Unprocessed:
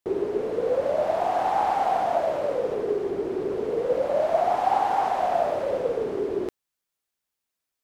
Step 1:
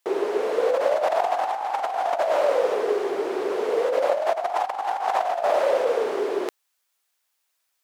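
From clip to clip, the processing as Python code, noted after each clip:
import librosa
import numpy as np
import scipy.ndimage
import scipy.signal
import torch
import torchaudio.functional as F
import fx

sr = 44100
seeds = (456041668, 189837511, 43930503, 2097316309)

y = scipy.signal.sosfilt(scipy.signal.butter(2, 650.0, 'highpass', fs=sr, output='sos'), x)
y = fx.over_compress(y, sr, threshold_db=-29.0, ratio=-0.5)
y = y * librosa.db_to_amplitude(7.5)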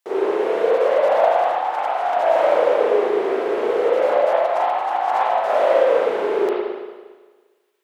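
y = fx.rev_spring(x, sr, rt60_s=1.4, pass_ms=(36, 57), chirp_ms=50, drr_db=-9.0)
y = y * librosa.db_to_amplitude(-4.5)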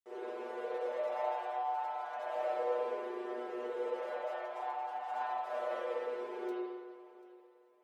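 y = fx.stiff_resonator(x, sr, f0_hz=120.0, decay_s=0.37, stiffness=0.002)
y = fx.echo_feedback(y, sr, ms=740, feedback_pct=34, wet_db=-20)
y = y * librosa.db_to_amplitude(-8.0)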